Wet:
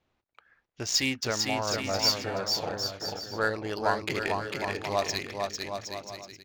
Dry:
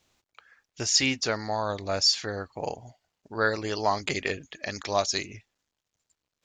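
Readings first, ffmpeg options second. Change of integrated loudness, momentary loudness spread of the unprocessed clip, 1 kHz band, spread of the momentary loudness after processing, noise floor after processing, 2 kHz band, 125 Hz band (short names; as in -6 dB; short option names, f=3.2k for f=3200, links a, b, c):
-2.0 dB, 13 LU, -0.5 dB, 10 LU, -77 dBFS, -1.0 dB, -0.5 dB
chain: -filter_complex "[0:a]adynamicsmooth=sensitivity=4:basefreq=2.6k,asplit=2[a][b];[b]aecho=0:1:450|765|985.5|1140|1248:0.631|0.398|0.251|0.158|0.1[c];[a][c]amix=inputs=2:normalize=0,volume=-2.5dB"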